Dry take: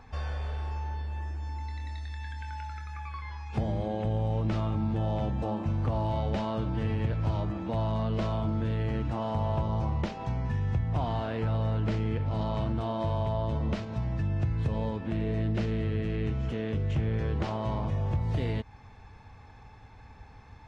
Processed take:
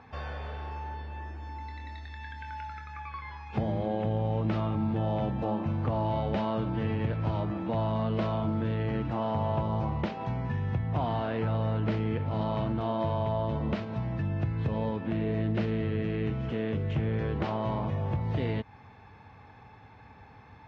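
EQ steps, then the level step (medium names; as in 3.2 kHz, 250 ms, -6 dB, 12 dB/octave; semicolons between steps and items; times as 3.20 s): band-pass 110–3600 Hz; +2.0 dB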